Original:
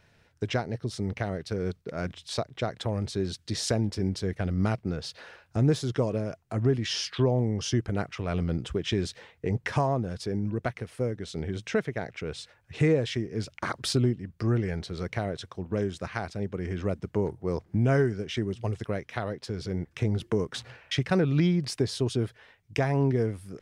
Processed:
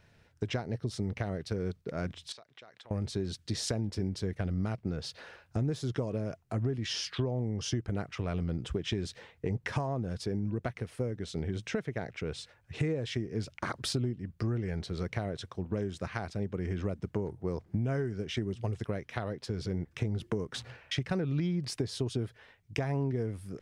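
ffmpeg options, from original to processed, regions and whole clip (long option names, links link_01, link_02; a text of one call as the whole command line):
ffmpeg -i in.wav -filter_complex "[0:a]asettb=1/sr,asplit=3[link_01][link_02][link_03];[link_01]atrim=end=2.324[link_04];[link_02]atrim=start=2.32:end=2.91,asetpts=PTS-STARTPTS,afade=type=in:duration=0.004:curve=qsin,afade=type=out:start_time=0.586:duration=0.004:curve=qsin,bandpass=frequency=2700:width_type=q:width=0.52,acompressor=threshold=-46dB:ratio=12:attack=3.2:release=140:knee=1:detection=peak[link_05];[link_03]atrim=start=2.906[link_06];[link_04][link_05]acrossfade=duration=0.004:curve1=hsin:curve2=qsin[link_07];[link_07][link_06]acrossfade=duration=0.004:curve1=qsin:curve2=hsin,acompressor=threshold=-28dB:ratio=6,lowshelf=frequency=340:gain=3.5,volume=-2.5dB" out.wav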